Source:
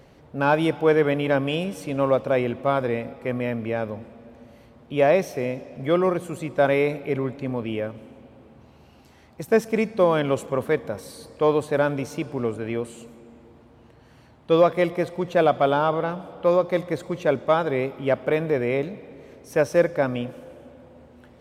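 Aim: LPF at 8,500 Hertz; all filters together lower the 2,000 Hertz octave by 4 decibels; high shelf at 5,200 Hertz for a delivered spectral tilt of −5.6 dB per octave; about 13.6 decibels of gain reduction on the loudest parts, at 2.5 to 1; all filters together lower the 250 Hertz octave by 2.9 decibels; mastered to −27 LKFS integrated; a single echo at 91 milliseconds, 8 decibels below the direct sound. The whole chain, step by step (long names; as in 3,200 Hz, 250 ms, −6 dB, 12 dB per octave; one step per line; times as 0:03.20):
low-pass filter 8,500 Hz
parametric band 250 Hz −4 dB
parametric band 2,000 Hz −6 dB
high-shelf EQ 5,200 Hz +4.5 dB
downward compressor 2.5 to 1, threshold −36 dBFS
single-tap delay 91 ms −8 dB
level +8.5 dB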